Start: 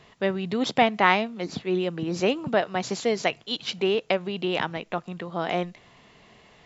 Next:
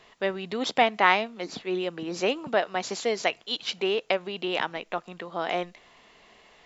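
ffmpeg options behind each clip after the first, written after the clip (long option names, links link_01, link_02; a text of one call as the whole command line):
ffmpeg -i in.wav -af "equalizer=frequency=120:width_type=o:width=1.8:gain=-14" out.wav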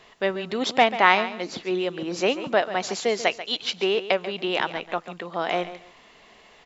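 ffmpeg -i in.wav -af "aecho=1:1:139|278:0.211|0.0444,volume=3dB" out.wav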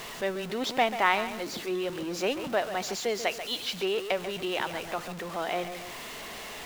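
ffmpeg -i in.wav -af "aeval=exprs='val(0)+0.5*0.0398*sgn(val(0))':channel_layout=same,volume=-7.5dB" out.wav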